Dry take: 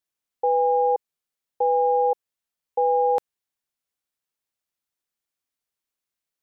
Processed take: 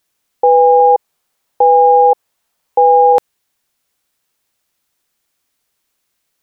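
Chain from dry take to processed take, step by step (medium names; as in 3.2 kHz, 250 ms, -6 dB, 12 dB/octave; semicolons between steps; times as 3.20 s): 0.80–3.13 s: peaking EQ 840 Hz +5.5 dB 1.4 oct; loudness maximiser +18.5 dB; trim -1 dB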